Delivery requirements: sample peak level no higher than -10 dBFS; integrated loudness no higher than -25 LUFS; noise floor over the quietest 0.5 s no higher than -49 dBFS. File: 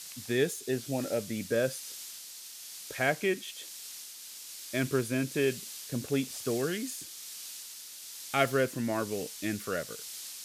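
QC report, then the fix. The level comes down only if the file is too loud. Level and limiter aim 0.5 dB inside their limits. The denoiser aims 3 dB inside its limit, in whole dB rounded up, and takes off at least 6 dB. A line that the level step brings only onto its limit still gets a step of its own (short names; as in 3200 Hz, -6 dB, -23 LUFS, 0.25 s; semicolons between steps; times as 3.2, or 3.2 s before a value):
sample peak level -11.5 dBFS: OK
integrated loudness -33.0 LUFS: OK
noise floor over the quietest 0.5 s -46 dBFS: fail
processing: denoiser 6 dB, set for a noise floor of -46 dBFS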